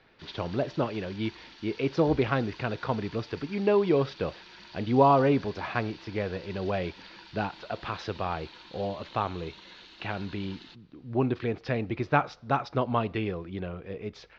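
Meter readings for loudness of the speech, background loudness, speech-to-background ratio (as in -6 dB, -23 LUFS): -29.5 LUFS, -48.5 LUFS, 19.0 dB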